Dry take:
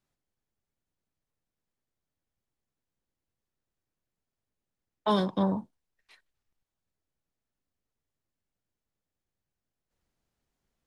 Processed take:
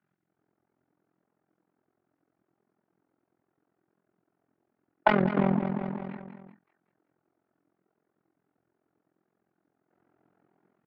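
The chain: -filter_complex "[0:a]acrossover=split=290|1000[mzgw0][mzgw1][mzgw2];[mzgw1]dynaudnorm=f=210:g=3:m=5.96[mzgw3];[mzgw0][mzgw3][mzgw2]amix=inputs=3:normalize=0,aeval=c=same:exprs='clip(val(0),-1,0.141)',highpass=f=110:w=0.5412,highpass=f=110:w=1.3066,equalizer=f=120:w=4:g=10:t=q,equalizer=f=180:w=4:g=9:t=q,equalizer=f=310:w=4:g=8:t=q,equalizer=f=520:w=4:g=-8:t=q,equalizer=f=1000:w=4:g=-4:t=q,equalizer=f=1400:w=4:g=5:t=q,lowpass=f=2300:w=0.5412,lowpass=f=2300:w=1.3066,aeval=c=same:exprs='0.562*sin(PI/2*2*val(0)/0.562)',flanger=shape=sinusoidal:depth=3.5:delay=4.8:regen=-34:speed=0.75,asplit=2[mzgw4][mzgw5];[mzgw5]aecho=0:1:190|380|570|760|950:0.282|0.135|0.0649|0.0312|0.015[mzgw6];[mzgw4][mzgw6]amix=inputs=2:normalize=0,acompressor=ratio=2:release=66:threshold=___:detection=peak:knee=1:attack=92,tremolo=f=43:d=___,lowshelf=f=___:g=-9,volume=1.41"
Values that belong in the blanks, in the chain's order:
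0.0251, 0.919, 150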